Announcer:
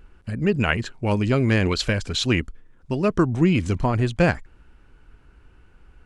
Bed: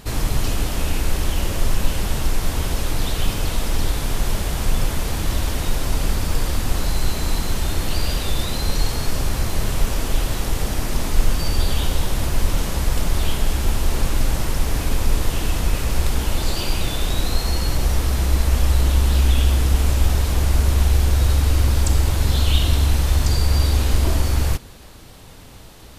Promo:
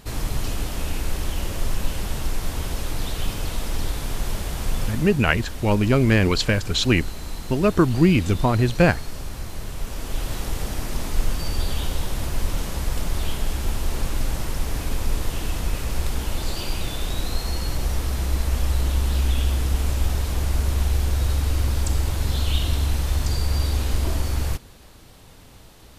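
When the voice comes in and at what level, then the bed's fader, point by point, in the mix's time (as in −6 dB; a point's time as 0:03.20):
4.60 s, +2.0 dB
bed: 0:04.85 −5 dB
0:05.18 −11 dB
0:09.76 −11 dB
0:10.33 −5 dB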